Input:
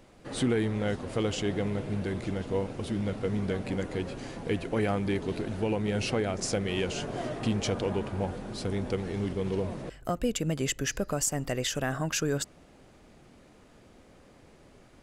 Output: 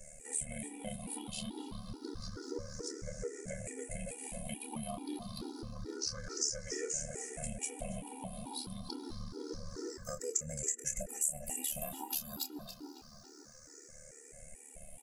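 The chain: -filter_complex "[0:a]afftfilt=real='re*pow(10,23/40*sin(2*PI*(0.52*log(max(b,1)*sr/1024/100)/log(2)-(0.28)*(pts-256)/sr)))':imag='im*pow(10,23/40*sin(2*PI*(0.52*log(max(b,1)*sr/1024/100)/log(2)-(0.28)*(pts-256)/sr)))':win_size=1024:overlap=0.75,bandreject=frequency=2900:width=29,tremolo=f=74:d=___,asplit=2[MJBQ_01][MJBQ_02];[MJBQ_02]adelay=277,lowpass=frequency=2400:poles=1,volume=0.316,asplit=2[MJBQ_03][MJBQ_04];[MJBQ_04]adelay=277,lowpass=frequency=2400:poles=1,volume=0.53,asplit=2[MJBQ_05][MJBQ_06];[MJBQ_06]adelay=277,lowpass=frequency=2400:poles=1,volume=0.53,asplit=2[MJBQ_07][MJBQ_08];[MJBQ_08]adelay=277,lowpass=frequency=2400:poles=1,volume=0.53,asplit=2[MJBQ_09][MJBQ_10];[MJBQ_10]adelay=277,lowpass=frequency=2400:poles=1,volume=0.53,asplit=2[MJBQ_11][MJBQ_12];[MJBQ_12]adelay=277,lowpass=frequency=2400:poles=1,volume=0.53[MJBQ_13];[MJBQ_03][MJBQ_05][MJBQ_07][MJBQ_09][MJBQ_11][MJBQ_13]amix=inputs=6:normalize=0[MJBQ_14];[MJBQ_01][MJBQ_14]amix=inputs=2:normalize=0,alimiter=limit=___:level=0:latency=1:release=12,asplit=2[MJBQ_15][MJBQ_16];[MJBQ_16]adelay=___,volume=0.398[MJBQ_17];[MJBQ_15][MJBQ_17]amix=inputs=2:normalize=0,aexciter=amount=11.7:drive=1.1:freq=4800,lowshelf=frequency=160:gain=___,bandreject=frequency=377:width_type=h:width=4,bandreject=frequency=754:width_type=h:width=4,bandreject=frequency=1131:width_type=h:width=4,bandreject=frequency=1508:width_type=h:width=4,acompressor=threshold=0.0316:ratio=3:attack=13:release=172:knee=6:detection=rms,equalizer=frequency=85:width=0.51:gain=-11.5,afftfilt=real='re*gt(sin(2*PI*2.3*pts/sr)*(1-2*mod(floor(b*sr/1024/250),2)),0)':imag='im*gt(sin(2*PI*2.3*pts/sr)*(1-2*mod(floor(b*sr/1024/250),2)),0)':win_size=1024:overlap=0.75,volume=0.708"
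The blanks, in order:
0.919, 0.188, 27, 12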